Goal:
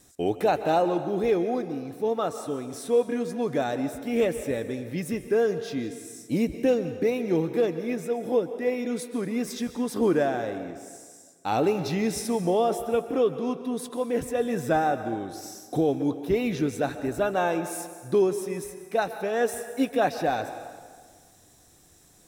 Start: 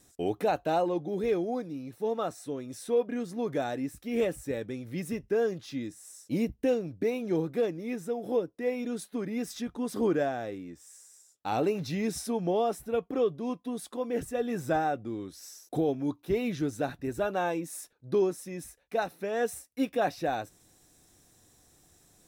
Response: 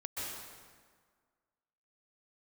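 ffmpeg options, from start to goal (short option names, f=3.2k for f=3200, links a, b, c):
-filter_complex "[0:a]asplit=2[a][b];[1:a]atrim=start_sample=2205,lowshelf=f=170:g=-7.5[c];[b][c]afir=irnorm=-1:irlink=0,volume=-9.5dB[d];[a][d]amix=inputs=2:normalize=0,volume=3dB"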